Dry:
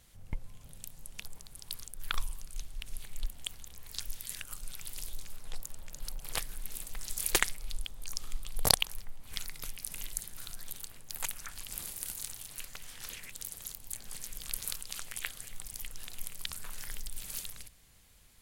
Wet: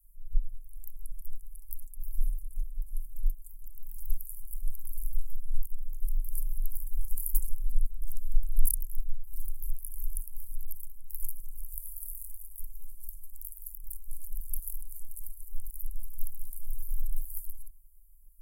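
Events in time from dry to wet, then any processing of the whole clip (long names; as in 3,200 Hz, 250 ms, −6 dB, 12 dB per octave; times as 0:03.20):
0:01.82–0:03.63: notch comb filter 240 Hz
whole clip: inverse Chebyshev band-stop filter 170–2,700 Hz, stop band 80 dB; high-shelf EQ 4,000 Hz −11.5 dB; level +13.5 dB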